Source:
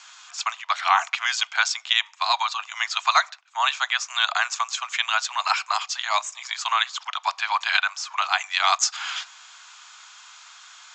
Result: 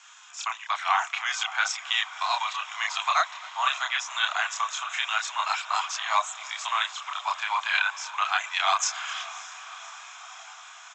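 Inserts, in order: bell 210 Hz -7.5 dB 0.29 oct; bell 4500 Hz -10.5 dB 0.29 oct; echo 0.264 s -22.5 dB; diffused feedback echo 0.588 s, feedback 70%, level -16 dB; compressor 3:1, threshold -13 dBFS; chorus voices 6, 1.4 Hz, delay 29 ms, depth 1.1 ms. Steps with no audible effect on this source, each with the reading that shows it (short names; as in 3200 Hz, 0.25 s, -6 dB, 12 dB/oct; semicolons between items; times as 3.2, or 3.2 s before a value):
bell 210 Hz: input band starts at 570 Hz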